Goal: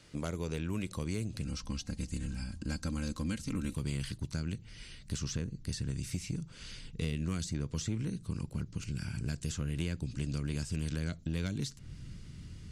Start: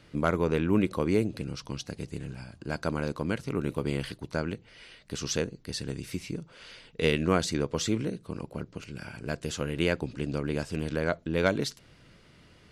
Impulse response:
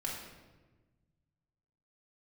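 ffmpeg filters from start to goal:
-filter_complex "[0:a]equalizer=f=7.4k:t=o:w=1.4:g=12.5,asettb=1/sr,asplit=3[a][b][c];[a]atrim=end=1.454[d];[b]atrim=start=1.45:end=3.76,asetpts=PTS-STARTPTS,afade=t=in:d=0.004:c=qsin,afade=t=out:st=2.306:d=0.004:c=qsin,aecho=1:1:3.8:0.68,atrim=end_sample=101871[e];[c]atrim=start=3.756[f];[d][e]acrossfade=d=0.004:c1=hsin:c2=qsin[g];[g][f]acrossfade=d=0.004:c1=qsin:c2=hsin,asubboost=boost=10.5:cutoff=180,acrossover=split=600|2400[h][i][j];[h]acompressor=threshold=-29dB:ratio=4[k];[i]acompressor=threshold=-43dB:ratio=4[l];[j]acompressor=threshold=-39dB:ratio=4[m];[k][l][m]amix=inputs=3:normalize=0,asoftclip=type=tanh:threshold=-17.5dB,volume=-4.5dB"

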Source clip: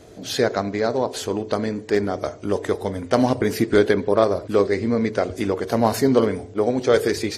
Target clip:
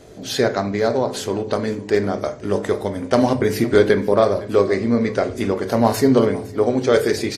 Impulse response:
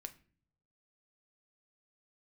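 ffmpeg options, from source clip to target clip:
-filter_complex "[0:a]aecho=1:1:509:0.1[a];[1:a]atrim=start_sample=2205[b];[a][b]afir=irnorm=-1:irlink=0,volume=6.5dB"

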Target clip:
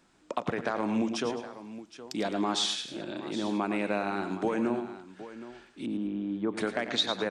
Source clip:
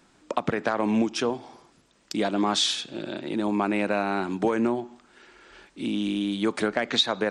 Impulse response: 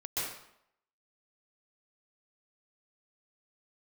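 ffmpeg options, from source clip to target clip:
-filter_complex "[0:a]asplit=3[a][b][c];[a]afade=t=out:st=5.85:d=0.02[d];[b]lowpass=1.1k,afade=t=in:st=5.85:d=0.02,afade=t=out:st=6.56:d=0.02[e];[c]afade=t=in:st=6.56:d=0.02[f];[d][e][f]amix=inputs=3:normalize=0,aecho=1:1:93|110|211|768:0.2|0.282|0.126|0.188,volume=-5.5dB"

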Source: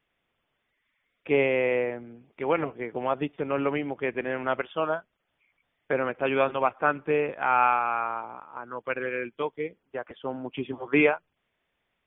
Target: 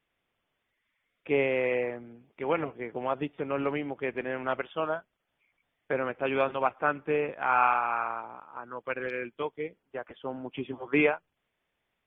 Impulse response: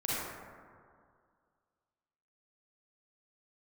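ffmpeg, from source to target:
-af "volume=-3dB" -ar 48000 -c:a aac -b:a 64k

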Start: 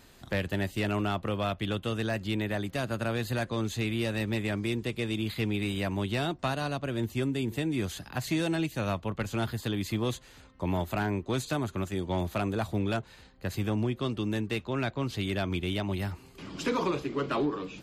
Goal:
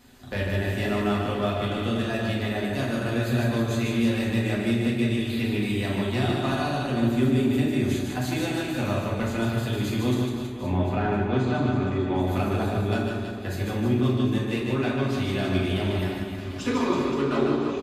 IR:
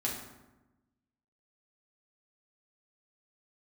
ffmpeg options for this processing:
-filter_complex "[0:a]asettb=1/sr,asplit=3[a][b][c];[a]atrim=end=10.144[d];[b]atrim=start=10.14:end=12.16,asetpts=PTS-STARTPTS,afade=t=in:d=0.004:c=qsin,afade=t=out:st=2.016:d=0.004:c=qsin,lowpass=3.2k[e];[c]atrim=start=12.156[f];[d][e]acrossfade=d=0.004:c1=hsin:c2=qsin[g];[g][f]acrossfade=d=0.004:c1=qsin:c2=hsin,aecho=1:1:150|322.5|520.9|749|1011:0.631|0.398|0.251|0.158|0.1[h];[1:a]atrim=start_sample=2205,afade=t=out:st=0.21:d=0.01,atrim=end_sample=9702[i];[h][i]afir=irnorm=-1:irlink=0,volume=-2dB"

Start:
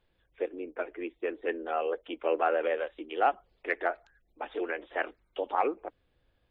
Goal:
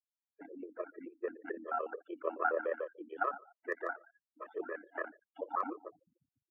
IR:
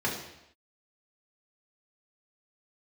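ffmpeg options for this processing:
-filter_complex "[0:a]areverse,acompressor=mode=upward:threshold=-43dB:ratio=2.5,areverse,equalizer=f=730:w=1:g=-6.5,asplit=2[a][b];[b]aecho=0:1:73|146|219|292:0.126|0.0567|0.0255|0.0115[c];[a][c]amix=inputs=2:normalize=0,afftfilt=real='re*gte(hypot(re,im),0.00398)':imag='im*gte(hypot(re,im),0.00398)':win_size=1024:overlap=0.75,acrossover=split=3400[d][e];[e]acompressor=threshold=-59dB:ratio=4:attack=1:release=60[f];[d][f]amix=inputs=2:normalize=0,tremolo=f=34:d=0.571,highpass=f=180:w=0.5412,highpass=f=180:w=1.3066,aeval=exprs='0.0944*(abs(mod(val(0)/0.0944+3,4)-2)-1)':c=same,highshelf=f=1.9k:t=q:w=3:g=-10.5,afftfilt=real='re*gt(sin(2*PI*6.9*pts/sr)*(1-2*mod(floor(b*sr/1024/330),2)),0)':imag='im*gt(sin(2*PI*6.9*pts/sr)*(1-2*mod(floor(b*sr/1024/330),2)),0)':win_size=1024:overlap=0.75,volume=1dB"

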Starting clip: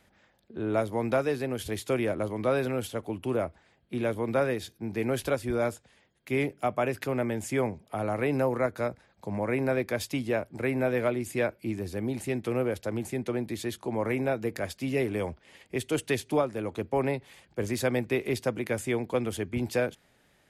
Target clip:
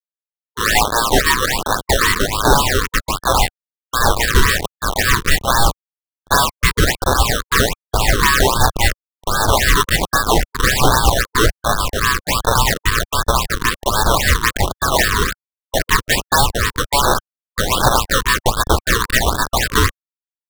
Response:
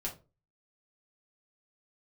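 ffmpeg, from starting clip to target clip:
-af "aresample=11025,acrusher=bits=5:mix=0:aa=0.000001,aresample=44100,crystalizer=i=3.5:c=0,aeval=exprs='val(0)*sin(2*PI*1400*n/s)':c=same,agate=range=-33dB:threshold=-39dB:ratio=3:detection=peak,asubboost=boost=12:cutoff=83,acrusher=samples=13:mix=1:aa=0.000001:lfo=1:lforange=13:lforate=3.7,apsyclip=21dB,afftfilt=real='re*(1-between(b*sr/1024,650*pow(2500/650,0.5+0.5*sin(2*PI*1.3*pts/sr))/1.41,650*pow(2500/650,0.5+0.5*sin(2*PI*1.3*pts/sr))*1.41))':imag='im*(1-between(b*sr/1024,650*pow(2500/650,0.5+0.5*sin(2*PI*1.3*pts/sr))/1.41,650*pow(2500/650,0.5+0.5*sin(2*PI*1.3*pts/sr))*1.41))':win_size=1024:overlap=0.75,volume=-4.5dB"

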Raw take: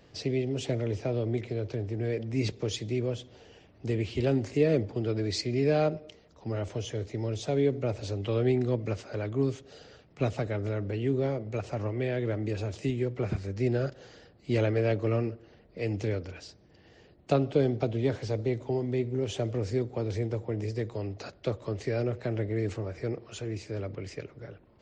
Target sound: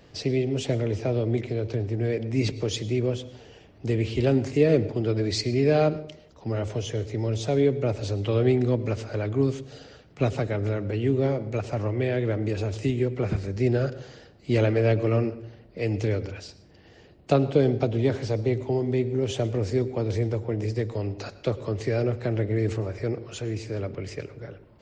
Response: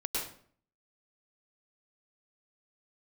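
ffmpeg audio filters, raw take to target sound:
-filter_complex "[0:a]asplit=2[a][b];[1:a]atrim=start_sample=2205,lowshelf=f=180:g=9[c];[b][c]afir=irnorm=-1:irlink=0,volume=-20.5dB[d];[a][d]amix=inputs=2:normalize=0,volume=3.5dB"

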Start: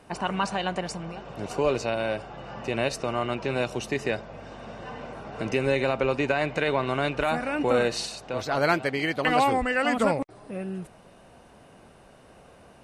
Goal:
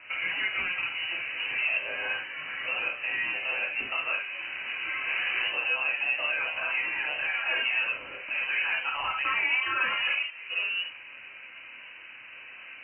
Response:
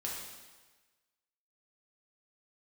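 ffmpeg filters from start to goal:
-filter_complex "[0:a]asettb=1/sr,asplit=3[a][b][c];[a]atrim=end=1.824[d];[b]atrim=start=1.82:end=2.66,asetpts=PTS-STARTPTS,afade=t=in:d=0.004:c=qsin,afade=t=out:st=0.836:d=0.004:c=qsin,equalizer=f=560:w=1.4:g=-9[e];[c]atrim=start=2.656[f];[d][e]acrossfade=d=0.004:c1=hsin:c2=qsin[g];[g][f]acrossfade=d=0.004:c1=qsin:c2=hsin,asettb=1/sr,asplit=3[h][i][j];[h]atrim=end=3.624[k];[i]atrim=start=3.62:end=4.24,asetpts=PTS-STARTPTS,afade=t=in:d=0.004:c=qsin,afade=t=out:st=0.616:d=0.004:c=qsin,highpass=200[l];[j]atrim=start=4.236[m];[k][l]acrossfade=d=0.004:c1=hsin:c2=qsin[n];[n][m]acrossfade=d=0.004:c1=qsin:c2=hsin,asettb=1/sr,asplit=3[o][p][q];[o]atrim=end=5.064[r];[p]atrim=start=5.06:end=5.48,asetpts=PTS-STARTPTS,afade=t=in:d=0.004:c=qsin,afade=t=out:st=0.416:d=0.004:c=qsin,acontrast=77[s];[q]atrim=start=5.476[t];[r][s]acrossfade=d=0.004:c1=hsin:c2=qsin[u];[u][t]acrossfade=d=0.004:c1=qsin:c2=hsin,alimiter=limit=-20dB:level=0:latency=1:release=271,asplit=2[v][w];[w]highpass=f=720:p=1,volume=17dB,asoftclip=type=tanh:threshold=-20dB[x];[v][x]amix=inputs=2:normalize=0,lowpass=f=2.1k:p=1,volume=-6dB[y];[1:a]atrim=start_sample=2205,atrim=end_sample=3528[z];[y][z]afir=irnorm=-1:irlink=0,lowpass=f=2.6k:t=q:w=0.5098,lowpass=f=2.6k:t=q:w=0.6013,lowpass=f=2.6k:t=q:w=0.9,lowpass=f=2.6k:t=q:w=2.563,afreqshift=-3100"

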